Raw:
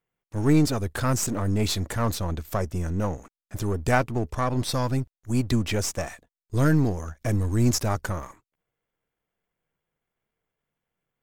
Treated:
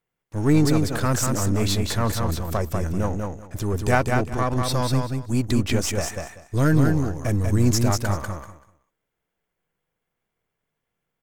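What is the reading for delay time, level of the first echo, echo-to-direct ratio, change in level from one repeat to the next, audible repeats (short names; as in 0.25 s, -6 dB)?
0.193 s, -4.0 dB, -4.0 dB, -14.5 dB, 3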